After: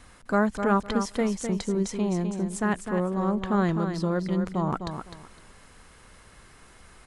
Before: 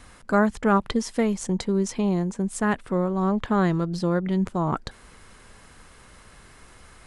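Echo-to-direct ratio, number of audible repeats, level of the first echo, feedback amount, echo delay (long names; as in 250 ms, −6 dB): −7.5 dB, 3, −7.5 dB, 22%, 255 ms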